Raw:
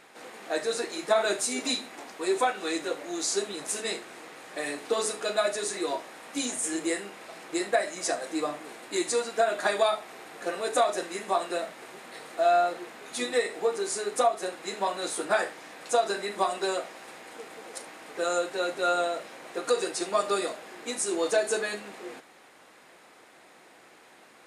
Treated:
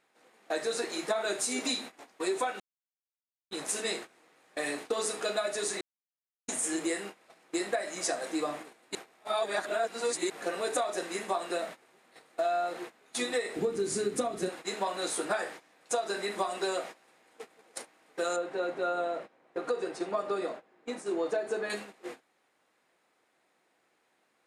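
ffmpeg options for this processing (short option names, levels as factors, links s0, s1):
-filter_complex "[0:a]asplit=3[s0][s1][s2];[s0]afade=t=out:st=13.55:d=0.02[s3];[s1]asubboost=boost=10.5:cutoff=230,afade=t=in:st=13.55:d=0.02,afade=t=out:st=14.48:d=0.02[s4];[s2]afade=t=in:st=14.48:d=0.02[s5];[s3][s4][s5]amix=inputs=3:normalize=0,asettb=1/sr,asplit=3[s6][s7][s8];[s6]atrim=end=18.364[s9];[s7]atrim=start=18.36:end=21.7,asetpts=PTS-STARTPTS,afade=t=in:d=0.004:c=qsin,afade=t=out:st=3.336:d=0.004:c=qsin,lowpass=f=1200:p=1[s10];[s8]atrim=start=21.696[s11];[s9][s10]acrossfade=d=0.004:c1=hsin:c2=qsin[s12];[s12][s11]acrossfade=d=0.004:c1=qsin:c2=hsin,asplit=7[s13][s14][s15][s16][s17][s18][s19];[s13]atrim=end=2.6,asetpts=PTS-STARTPTS,afade=t=out:st=2.596:d=0.004:c=hsin[s20];[s14]atrim=start=2.6:end=3.51,asetpts=PTS-STARTPTS,volume=0[s21];[s15]atrim=start=3.51:end=5.81,asetpts=PTS-STARTPTS,afade=t=in:d=0.004:c=hsin,afade=t=out:st=2.296:d=0.004:c=hsin[s22];[s16]atrim=start=5.81:end=6.48,asetpts=PTS-STARTPTS,volume=0[s23];[s17]atrim=start=6.48:end=8.952,asetpts=PTS-STARTPTS,afade=t=in:d=0.004:c=hsin[s24];[s18]atrim=start=8.948:end=10.302,asetpts=PTS-STARTPTS,areverse[s25];[s19]atrim=start=10.298[s26];[s20][s21][s22][s23][s24]concat=n=5:v=0:a=1[s27];[s27][s25]acrossfade=d=0.004:c1=hsin:c2=hsin[s28];[s28][s26]acrossfade=d=0.004:c1=hsin:c2=hsin,agate=range=0.126:threshold=0.01:ratio=16:detection=peak,acompressor=threshold=0.0447:ratio=6"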